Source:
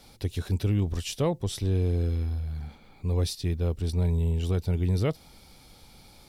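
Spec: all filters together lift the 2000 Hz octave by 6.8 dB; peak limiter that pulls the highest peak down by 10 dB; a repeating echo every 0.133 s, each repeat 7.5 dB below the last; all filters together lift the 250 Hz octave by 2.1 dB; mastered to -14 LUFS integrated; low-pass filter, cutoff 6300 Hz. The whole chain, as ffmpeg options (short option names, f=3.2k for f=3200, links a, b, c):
-af "lowpass=6.3k,equalizer=f=250:t=o:g=3,equalizer=f=2k:t=o:g=8.5,alimiter=limit=-22dB:level=0:latency=1,aecho=1:1:133|266|399|532|665:0.422|0.177|0.0744|0.0312|0.0131,volume=16dB"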